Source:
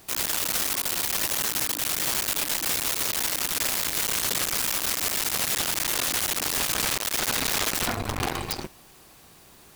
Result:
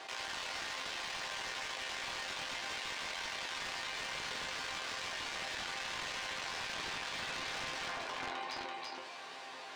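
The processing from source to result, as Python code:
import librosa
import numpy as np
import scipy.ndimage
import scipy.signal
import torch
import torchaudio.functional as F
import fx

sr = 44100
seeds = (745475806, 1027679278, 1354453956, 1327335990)

y = fx.octave_divider(x, sr, octaves=2, level_db=2.0)
y = scipy.signal.sosfilt(scipy.signal.butter(2, 710.0, 'highpass', fs=sr, output='sos'), y)
y = fx.high_shelf(y, sr, hz=7100.0, db=-10.0)
y = fx.notch(y, sr, hz=1300.0, q=14.0)
y = fx.resonator_bank(y, sr, root=41, chord='fifth', decay_s=0.2)
y = (np.mod(10.0 ** (31.0 / 20.0) * y + 1.0, 2.0) - 1.0) / 10.0 ** (31.0 / 20.0)
y = fx.air_absorb(y, sr, metres=130.0)
y = y + 10.0 ** (-7.0 / 20.0) * np.pad(y, (int(334 * sr / 1000.0), 0))[:len(y)]
y = fx.env_flatten(y, sr, amount_pct=70)
y = F.gain(torch.from_numpy(y), 1.0).numpy()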